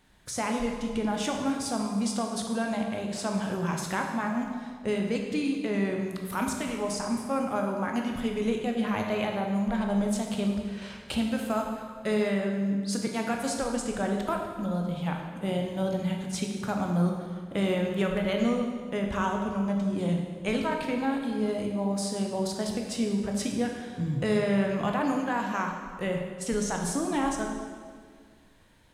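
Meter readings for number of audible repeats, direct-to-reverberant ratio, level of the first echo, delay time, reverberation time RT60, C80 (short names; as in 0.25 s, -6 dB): none, 1.5 dB, none, none, 1.8 s, 5.5 dB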